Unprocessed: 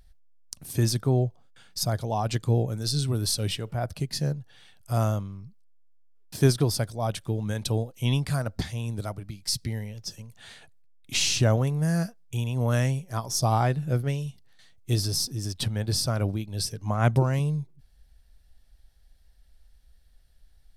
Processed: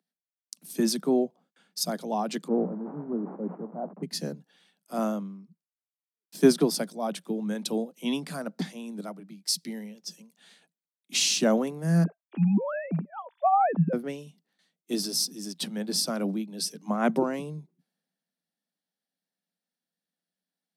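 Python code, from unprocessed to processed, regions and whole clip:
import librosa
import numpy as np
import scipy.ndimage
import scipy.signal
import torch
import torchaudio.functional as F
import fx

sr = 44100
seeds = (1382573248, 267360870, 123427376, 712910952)

y = fx.chain(x, sr, fx.delta_mod(bps=16000, step_db=-33.5),
    fx.lowpass(hz=1000.0, slope=24), at=(2.48, 4.03))
y = fx.chain(y, sr, fx.sine_speech(),
    fx.lowpass(hz=1000.0, slope=6), at=(12.04, 13.93))
y = scipy.signal.sosfilt(scipy.signal.butter(16, 170.0, 'highpass', fs=sr, output='sos'), y)
y = fx.low_shelf(y, sr, hz=270.0, db=11.5)
y = fx.band_widen(y, sr, depth_pct=40)
y = y * 10.0 ** (-2.5 / 20.0)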